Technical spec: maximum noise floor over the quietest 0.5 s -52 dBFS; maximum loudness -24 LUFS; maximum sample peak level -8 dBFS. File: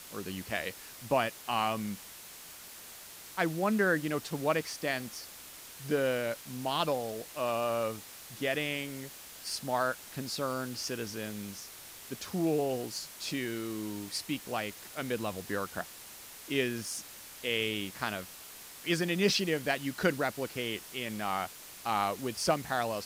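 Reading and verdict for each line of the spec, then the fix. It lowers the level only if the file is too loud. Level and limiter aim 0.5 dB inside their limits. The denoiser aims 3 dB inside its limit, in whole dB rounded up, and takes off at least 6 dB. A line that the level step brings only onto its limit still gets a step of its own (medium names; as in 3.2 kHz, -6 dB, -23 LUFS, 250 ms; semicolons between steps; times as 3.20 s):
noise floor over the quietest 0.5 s -49 dBFS: fail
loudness -33.5 LUFS: pass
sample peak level -12.5 dBFS: pass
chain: noise reduction 6 dB, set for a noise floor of -49 dBFS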